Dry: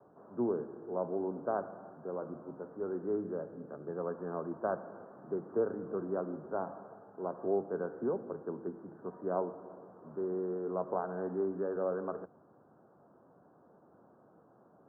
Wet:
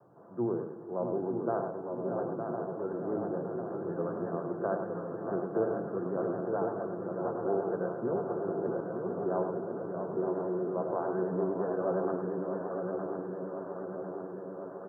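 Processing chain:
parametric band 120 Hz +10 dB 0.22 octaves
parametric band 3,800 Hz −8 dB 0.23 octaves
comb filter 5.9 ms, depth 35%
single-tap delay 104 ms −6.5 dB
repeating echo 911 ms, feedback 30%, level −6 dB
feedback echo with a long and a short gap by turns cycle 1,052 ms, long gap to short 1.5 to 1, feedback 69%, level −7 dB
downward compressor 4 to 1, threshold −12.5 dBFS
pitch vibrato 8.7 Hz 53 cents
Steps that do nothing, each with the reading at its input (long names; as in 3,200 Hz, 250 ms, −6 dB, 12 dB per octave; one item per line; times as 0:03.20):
parametric band 3,800 Hz: nothing at its input above 1,600 Hz
downward compressor, threshold −12.5 dBFS: peak of its input −18.0 dBFS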